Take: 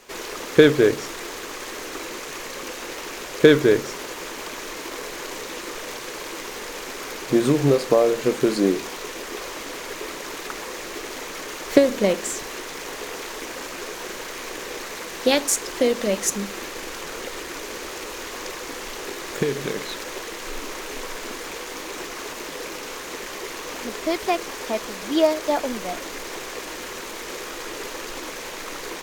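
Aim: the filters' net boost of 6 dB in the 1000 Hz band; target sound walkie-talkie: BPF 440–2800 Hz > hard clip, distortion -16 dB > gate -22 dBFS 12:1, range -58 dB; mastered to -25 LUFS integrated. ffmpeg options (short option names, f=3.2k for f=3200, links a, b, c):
-af "highpass=440,lowpass=2.8k,equalizer=f=1k:t=o:g=8,asoftclip=type=hard:threshold=-10.5dB,agate=range=-58dB:threshold=-22dB:ratio=12,volume=-2dB"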